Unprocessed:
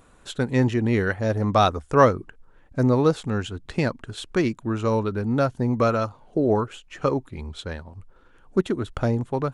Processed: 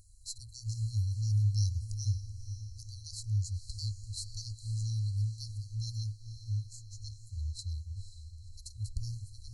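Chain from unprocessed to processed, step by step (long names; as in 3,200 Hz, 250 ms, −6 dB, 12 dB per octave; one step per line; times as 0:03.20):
brick-wall band-stop 110–4,000 Hz
feedback delay with all-pass diffusion 509 ms, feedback 51%, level −11 dB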